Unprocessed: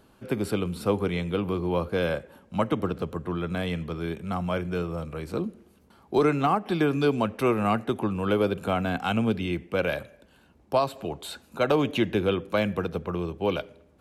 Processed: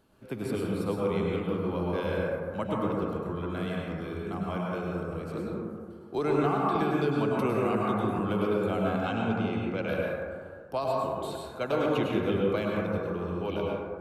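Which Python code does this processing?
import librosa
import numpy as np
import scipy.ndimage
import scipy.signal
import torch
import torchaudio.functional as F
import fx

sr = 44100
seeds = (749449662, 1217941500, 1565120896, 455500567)

y = fx.lowpass(x, sr, hz=7200.0, slope=24, at=(8.96, 9.89))
y = fx.rev_plate(y, sr, seeds[0], rt60_s=2.0, hf_ratio=0.25, predelay_ms=90, drr_db=-3.5)
y = fx.band_squash(y, sr, depth_pct=70, at=(6.75, 8.19))
y = y * librosa.db_to_amplitude(-8.5)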